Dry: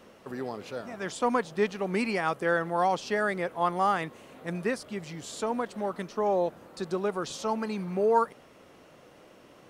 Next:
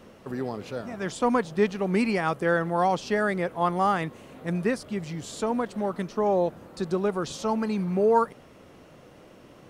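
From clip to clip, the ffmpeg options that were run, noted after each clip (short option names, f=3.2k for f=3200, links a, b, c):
-af "lowshelf=f=240:g=9,volume=1dB"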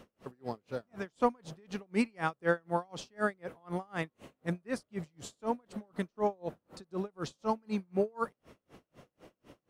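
-af "aeval=exprs='val(0)*pow(10,-38*(0.5-0.5*cos(2*PI*4*n/s))/20)':c=same,volume=-2dB"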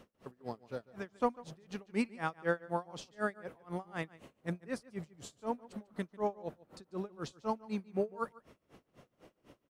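-filter_complex "[0:a]asplit=2[a][b];[b]adelay=145.8,volume=-20dB,highshelf=f=4k:g=-3.28[c];[a][c]amix=inputs=2:normalize=0,volume=-3.5dB"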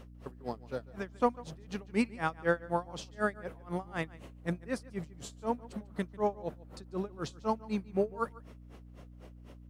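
-af "aeval=exprs='val(0)+0.002*(sin(2*PI*60*n/s)+sin(2*PI*2*60*n/s)/2+sin(2*PI*3*60*n/s)/3+sin(2*PI*4*60*n/s)/4+sin(2*PI*5*60*n/s)/5)':c=same,volume=3.5dB"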